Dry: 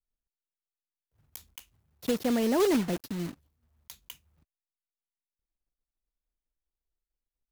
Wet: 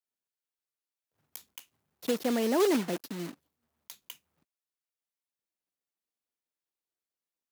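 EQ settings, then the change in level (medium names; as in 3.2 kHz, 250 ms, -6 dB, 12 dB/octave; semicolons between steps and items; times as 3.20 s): high-pass 230 Hz 12 dB/octave; 0.0 dB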